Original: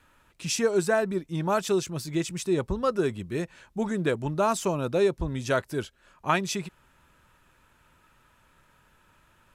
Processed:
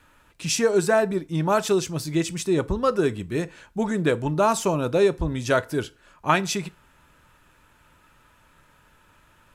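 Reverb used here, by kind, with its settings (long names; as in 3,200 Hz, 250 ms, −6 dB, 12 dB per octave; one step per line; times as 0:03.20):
feedback delay network reverb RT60 0.37 s, low-frequency decay 0.9×, high-frequency decay 0.8×, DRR 14 dB
level +4 dB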